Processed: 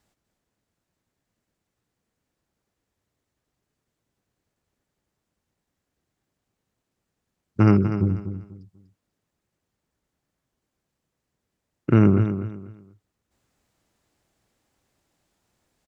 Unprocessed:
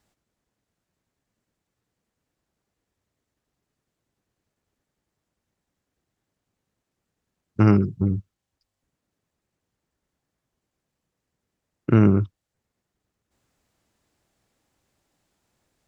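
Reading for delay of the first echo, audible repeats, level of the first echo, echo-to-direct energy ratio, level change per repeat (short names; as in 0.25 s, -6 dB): 0.245 s, 3, -10.0 dB, -9.5 dB, -11.5 dB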